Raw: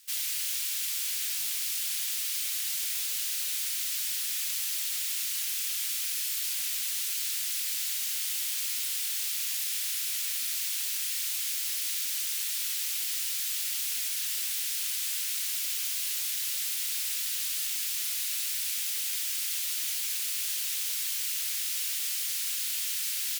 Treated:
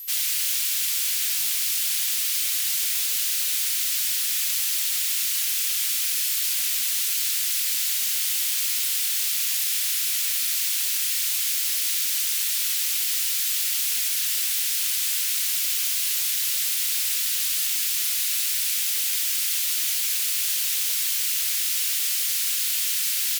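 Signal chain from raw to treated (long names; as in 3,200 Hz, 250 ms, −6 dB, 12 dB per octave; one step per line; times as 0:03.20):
steady tone 12,000 Hz −42 dBFS
level +7 dB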